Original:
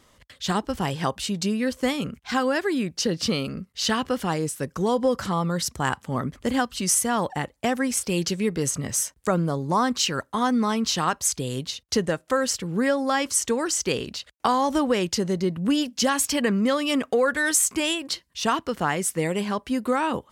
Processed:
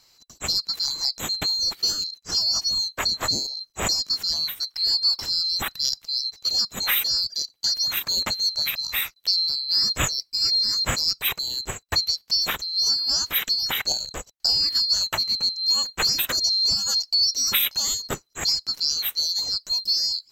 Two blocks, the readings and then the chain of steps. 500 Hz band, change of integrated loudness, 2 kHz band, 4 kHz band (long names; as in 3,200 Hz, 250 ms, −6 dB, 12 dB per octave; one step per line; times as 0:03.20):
−16.0 dB, +3.0 dB, −2.5 dB, +11.5 dB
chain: neighbouring bands swapped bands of 4,000 Hz
low-shelf EQ 160 Hz +8 dB